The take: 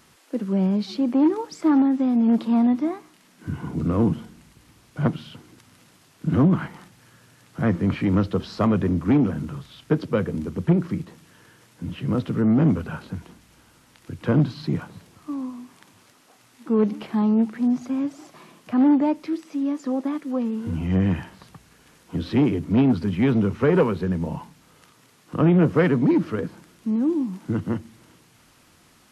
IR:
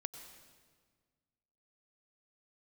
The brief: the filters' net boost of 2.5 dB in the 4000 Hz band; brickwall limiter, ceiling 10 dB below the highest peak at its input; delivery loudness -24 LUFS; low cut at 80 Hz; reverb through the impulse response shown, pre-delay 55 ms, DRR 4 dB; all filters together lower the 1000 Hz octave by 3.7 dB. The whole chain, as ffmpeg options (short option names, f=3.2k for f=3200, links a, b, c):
-filter_complex "[0:a]highpass=80,equalizer=f=1k:t=o:g=-5,equalizer=f=4k:t=o:g=3.5,alimiter=limit=-17.5dB:level=0:latency=1,asplit=2[a][b];[1:a]atrim=start_sample=2205,adelay=55[c];[b][c]afir=irnorm=-1:irlink=0,volume=-2dB[d];[a][d]amix=inputs=2:normalize=0,volume=1.5dB"